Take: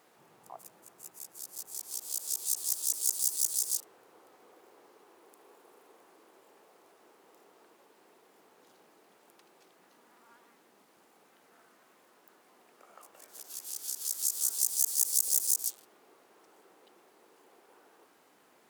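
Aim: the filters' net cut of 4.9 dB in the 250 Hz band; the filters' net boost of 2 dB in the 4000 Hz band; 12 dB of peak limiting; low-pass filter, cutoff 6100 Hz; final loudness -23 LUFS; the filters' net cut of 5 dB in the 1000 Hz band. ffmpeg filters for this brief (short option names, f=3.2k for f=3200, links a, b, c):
-af "lowpass=6.1k,equalizer=f=250:t=o:g=-7,equalizer=f=1k:t=o:g=-6.5,equalizer=f=4k:t=o:g=5,volume=18.5dB,alimiter=limit=-11dB:level=0:latency=1"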